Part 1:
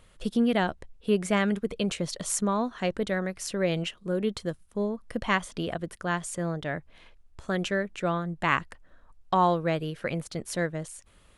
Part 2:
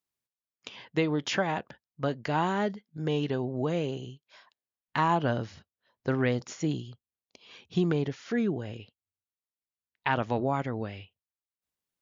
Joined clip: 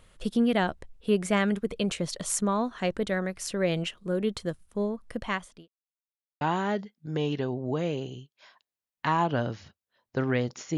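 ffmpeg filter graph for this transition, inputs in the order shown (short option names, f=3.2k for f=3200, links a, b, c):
-filter_complex "[0:a]apad=whole_dur=10.77,atrim=end=10.77,asplit=2[a][b];[a]atrim=end=5.68,asetpts=PTS-STARTPTS,afade=t=out:st=4.74:d=0.94:c=qsin[c];[b]atrim=start=5.68:end=6.41,asetpts=PTS-STARTPTS,volume=0[d];[1:a]atrim=start=2.32:end=6.68,asetpts=PTS-STARTPTS,afade=t=in:d=0.004:c=hsin[e];[c][d][e]concat=n=3:v=0:a=1"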